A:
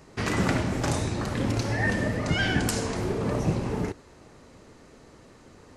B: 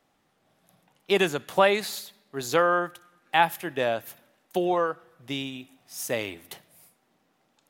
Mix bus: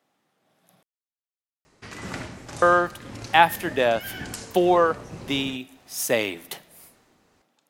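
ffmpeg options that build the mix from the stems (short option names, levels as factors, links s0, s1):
-filter_complex "[0:a]tiltshelf=f=970:g=-3.5,tremolo=f=1.9:d=0.44,adelay=1650,volume=0.158[s0];[1:a]highpass=140,volume=0.75,asplit=3[s1][s2][s3];[s1]atrim=end=0.83,asetpts=PTS-STARTPTS,afade=t=out:st=0.826:d=0.004:c=hsin[s4];[s2]atrim=start=0.83:end=2.62,asetpts=PTS-STARTPTS,volume=0[s5];[s3]atrim=start=2.62,asetpts=PTS-STARTPTS,afade=t=in:d=0.004:c=hsin[s6];[s4][s5][s6]concat=n=3:v=0:a=1[s7];[s0][s7]amix=inputs=2:normalize=0,dynaudnorm=f=310:g=5:m=2.82"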